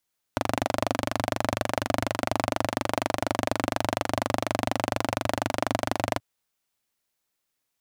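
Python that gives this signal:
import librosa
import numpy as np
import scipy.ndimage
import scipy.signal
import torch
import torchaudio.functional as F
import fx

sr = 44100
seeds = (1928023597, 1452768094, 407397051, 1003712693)

y = fx.engine_single(sr, seeds[0], length_s=5.83, rpm=2900, resonances_hz=(110.0, 270.0, 610.0))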